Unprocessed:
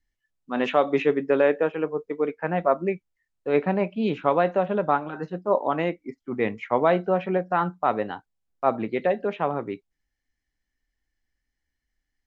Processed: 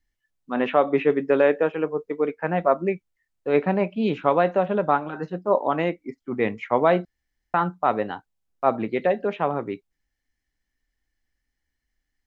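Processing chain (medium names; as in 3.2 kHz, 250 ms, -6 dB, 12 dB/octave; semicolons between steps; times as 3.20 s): 0.54–1.10 s: low-pass 2.6 kHz 12 dB/octave; 7.05–7.54 s: room tone; trim +1.5 dB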